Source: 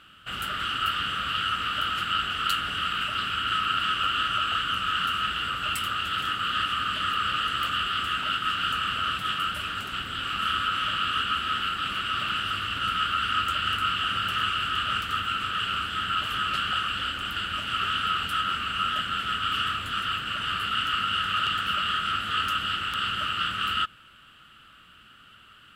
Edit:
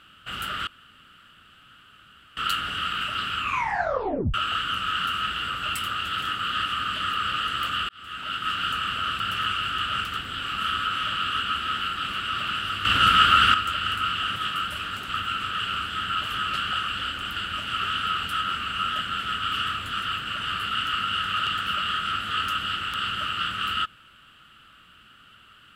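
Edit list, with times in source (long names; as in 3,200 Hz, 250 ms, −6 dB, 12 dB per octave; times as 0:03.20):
0:00.67–0:02.37: fill with room tone
0:03.37: tape stop 0.97 s
0:07.89–0:08.51: fade in
0:09.20–0:09.98: swap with 0:14.17–0:15.14
0:12.66–0:13.35: clip gain +9.5 dB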